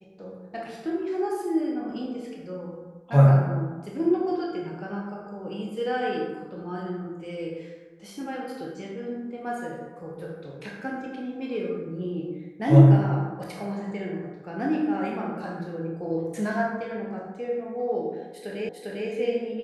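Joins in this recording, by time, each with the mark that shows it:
18.69 repeat of the last 0.4 s

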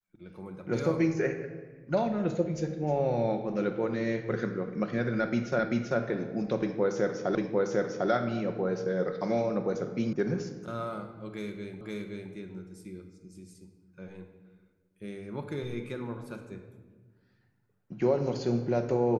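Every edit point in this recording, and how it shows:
5.59 repeat of the last 0.39 s
7.35 repeat of the last 0.75 s
10.13 sound cut off
11.81 repeat of the last 0.52 s

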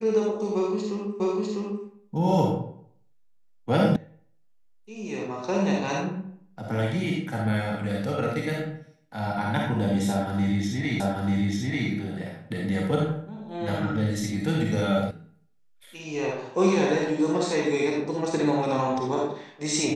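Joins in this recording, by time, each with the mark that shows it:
1.2 repeat of the last 0.65 s
3.96 sound cut off
11 repeat of the last 0.89 s
15.11 sound cut off

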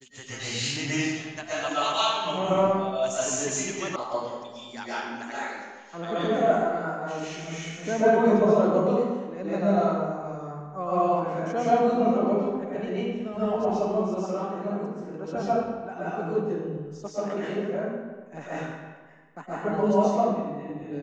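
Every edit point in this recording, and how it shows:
3.96 sound cut off

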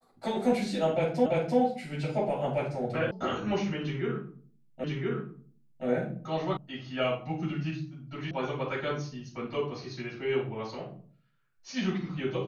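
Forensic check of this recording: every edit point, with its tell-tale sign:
1.26 repeat of the last 0.34 s
3.11 sound cut off
4.84 repeat of the last 1.02 s
6.57 sound cut off
8.31 sound cut off

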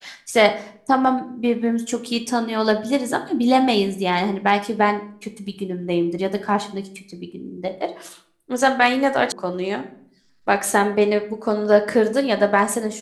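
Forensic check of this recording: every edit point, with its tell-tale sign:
9.32 sound cut off

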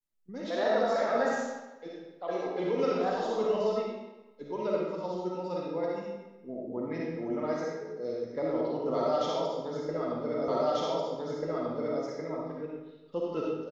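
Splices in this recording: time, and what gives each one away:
10.48 repeat of the last 1.54 s

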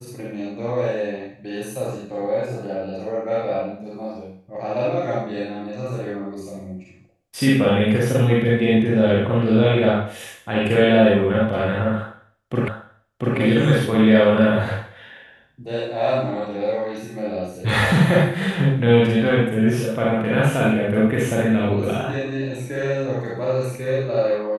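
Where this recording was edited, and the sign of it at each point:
12.68 repeat of the last 0.69 s

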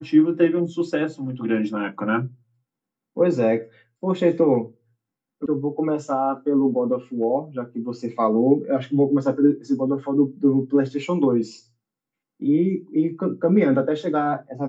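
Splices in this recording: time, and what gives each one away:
5.46 sound cut off

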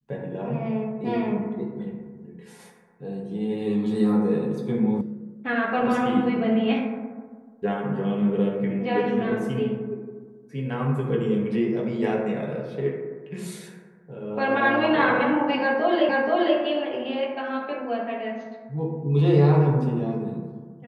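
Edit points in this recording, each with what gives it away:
5.01 sound cut off
16.09 repeat of the last 0.48 s

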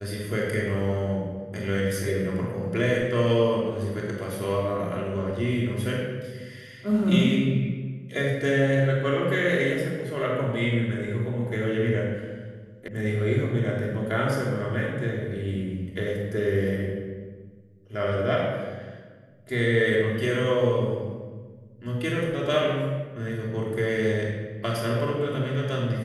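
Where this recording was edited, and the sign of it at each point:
12.88 sound cut off

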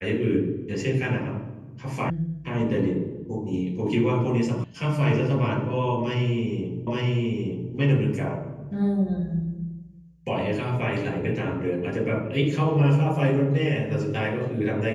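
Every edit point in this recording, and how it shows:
2.1 sound cut off
4.64 sound cut off
6.87 repeat of the last 0.87 s

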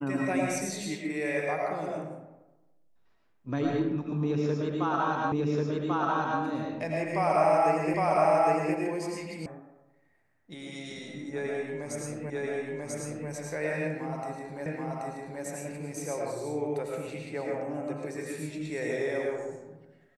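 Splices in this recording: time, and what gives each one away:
5.32 repeat of the last 1.09 s
7.94 repeat of the last 0.81 s
9.46 sound cut off
12.3 repeat of the last 0.99 s
14.66 repeat of the last 0.78 s

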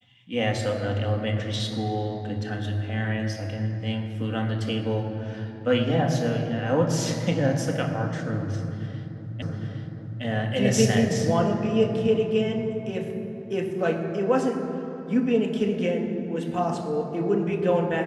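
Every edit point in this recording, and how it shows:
9.42 repeat of the last 0.81 s

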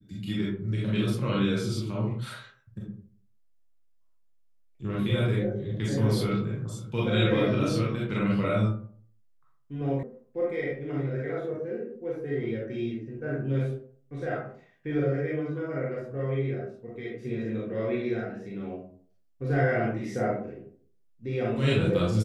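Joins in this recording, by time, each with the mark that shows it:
10.03 sound cut off

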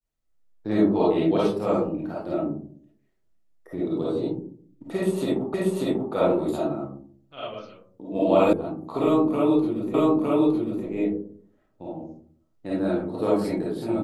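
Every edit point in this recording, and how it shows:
5.54 repeat of the last 0.59 s
8.53 sound cut off
9.94 repeat of the last 0.91 s

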